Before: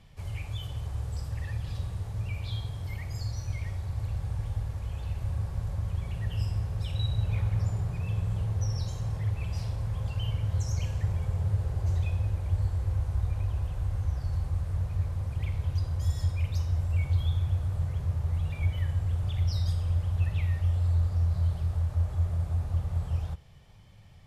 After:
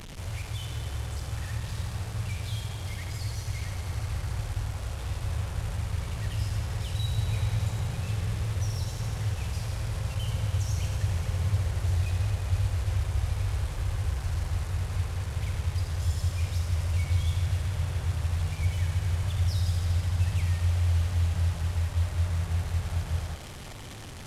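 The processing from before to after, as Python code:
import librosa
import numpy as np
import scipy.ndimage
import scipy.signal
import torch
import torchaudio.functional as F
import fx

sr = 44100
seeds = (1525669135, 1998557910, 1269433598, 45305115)

p1 = fx.delta_mod(x, sr, bps=64000, step_db=-36.0)
y = p1 + fx.echo_thinned(p1, sr, ms=81, feedback_pct=84, hz=160.0, wet_db=-9, dry=0)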